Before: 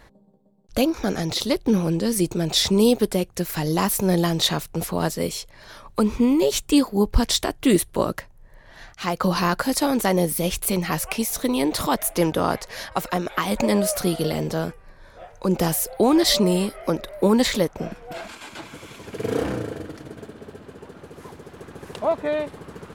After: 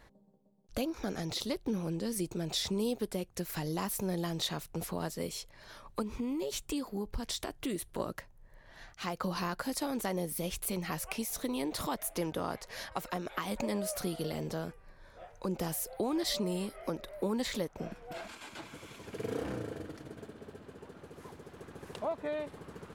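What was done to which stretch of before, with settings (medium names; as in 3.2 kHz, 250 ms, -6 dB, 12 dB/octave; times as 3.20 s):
6.02–8.00 s: compression 2:1, threshold -24 dBFS
whole clip: compression 2:1, threshold -26 dBFS; trim -8.5 dB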